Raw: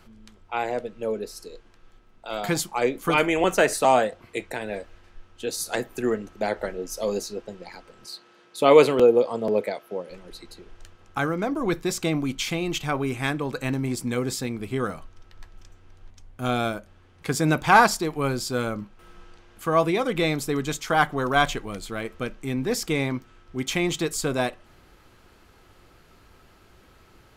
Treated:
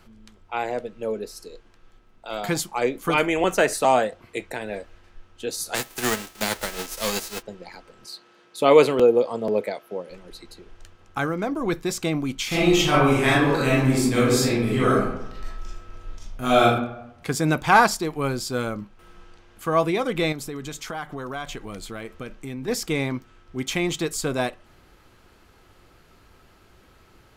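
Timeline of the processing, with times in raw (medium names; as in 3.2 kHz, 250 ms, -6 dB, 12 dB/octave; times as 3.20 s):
5.74–7.41 s: formants flattened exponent 0.3
12.47–16.62 s: reverb throw, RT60 0.84 s, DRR -8.5 dB
20.32–22.68 s: compression 4:1, threshold -30 dBFS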